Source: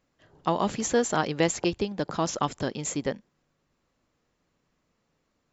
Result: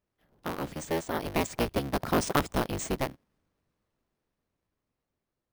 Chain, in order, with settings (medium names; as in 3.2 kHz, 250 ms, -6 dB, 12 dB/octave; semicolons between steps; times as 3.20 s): cycle switcher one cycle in 3, inverted; Doppler pass-by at 2.38 s, 11 m/s, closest 6.2 m; bass shelf 400 Hz +4.5 dB; careless resampling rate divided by 3×, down filtered, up hold